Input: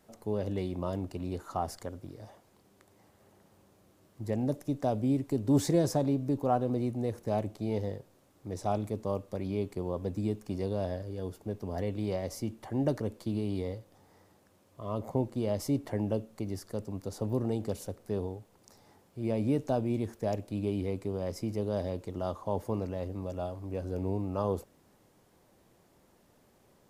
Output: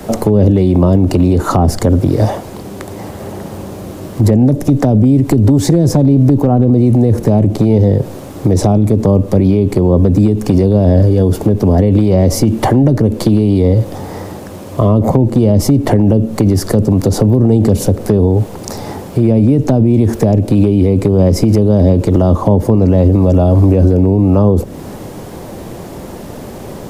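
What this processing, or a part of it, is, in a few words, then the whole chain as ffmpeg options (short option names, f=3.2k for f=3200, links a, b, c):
mastering chain: -filter_complex "[0:a]equalizer=f=1.4k:t=o:w=1.4:g=-2.5,acrossover=split=140|350[a][b][c];[a]acompressor=threshold=-41dB:ratio=4[d];[b]acompressor=threshold=-37dB:ratio=4[e];[c]acompressor=threshold=-46dB:ratio=4[f];[d][e][f]amix=inputs=3:normalize=0,acompressor=threshold=-39dB:ratio=2.5,tiltshelf=f=1.3k:g=3.5,asoftclip=type=hard:threshold=-29dB,alimiter=level_in=35.5dB:limit=-1dB:release=50:level=0:latency=1,volume=-1dB"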